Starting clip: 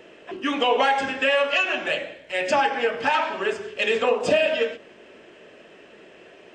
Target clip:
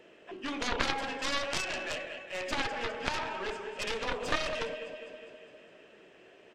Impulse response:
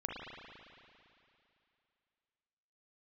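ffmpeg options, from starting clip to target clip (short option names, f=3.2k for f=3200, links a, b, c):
-af "aecho=1:1:204|408|612|816|1020|1224|1428:0.282|0.169|0.101|0.0609|0.0365|0.0219|0.0131,aeval=exprs='0.398*(cos(1*acos(clip(val(0)/0.398,-1,1)))-cos(1*PI/2))+0.2*(cos(2*acos(clip(val(0)/0.398,-1,1)))-cos(2*PI/2))+0.2*(cos(3*acos(clip(val(0)/0.398,-1,1)))-cos(3*PI/2))+0.0158*(cos(4*acos(clip(val(0)/0.398,-1,1)))-cos(4*PI/2))+0.0112*(cos(7*acos(clip(val(0)/0.398,-1,1)))-cos(7*PI/2))':c=same,volume=-6dB"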